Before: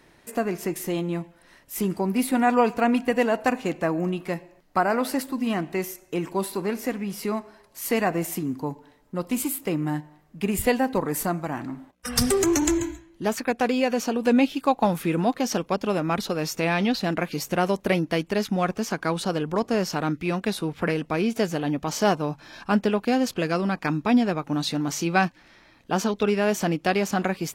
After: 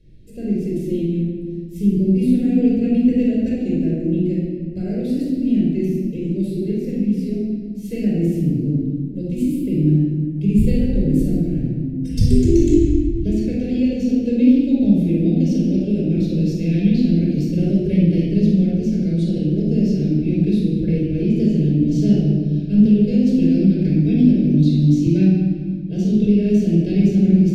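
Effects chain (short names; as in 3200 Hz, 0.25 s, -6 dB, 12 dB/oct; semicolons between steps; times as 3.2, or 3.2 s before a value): Chebyshev band-stop 320–3500 Hz, order 2; RIAA curve playback; notches 60/120/180/240 Hz; reverb RT60 1.8 s, pre-delay 20 ms, DRR -5 dB; 22.85–25.07 three-band squash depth 40%; gain -6.5 dB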